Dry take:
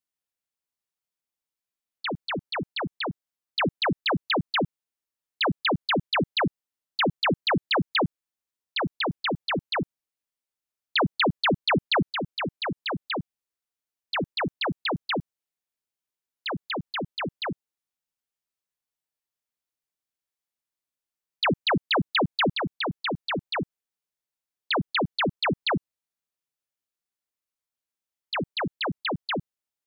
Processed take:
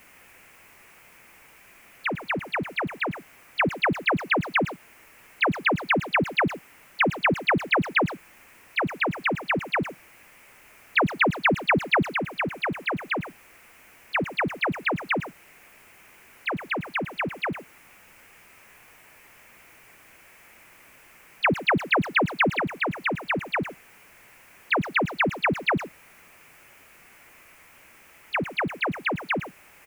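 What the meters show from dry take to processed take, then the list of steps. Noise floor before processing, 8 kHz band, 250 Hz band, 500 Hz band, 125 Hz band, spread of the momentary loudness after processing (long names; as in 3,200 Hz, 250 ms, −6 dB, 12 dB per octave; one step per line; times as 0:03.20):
below −85 dBFS, can't be measured, +0.5 dB, +1.0 dB, +0.5 dB, 9 LU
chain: converter with a step at zero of −40.5 dBFS
high shelf with overshoot 3,000 Hz −8 dB, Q 3
far-end echo of a speakerphone 110 ms, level −11 dB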